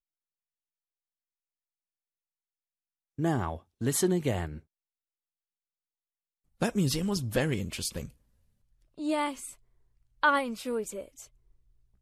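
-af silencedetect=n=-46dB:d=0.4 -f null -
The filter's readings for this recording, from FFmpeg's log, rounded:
silence_start: 0.00
silence_end: 3.18 | silence_duration: 3.18
silence_start: 4.60
silence_end: 6.61 | silence_duration: 2.01
silence_start: 8.10
silence_end: 8.98 | silence_duration: 0.87
silence_start: 9.53
silence_end: 10.23 | silence_duration: 0.70
silence_start: 11.25
silence_end: 12.02 | silence_duration: 0.77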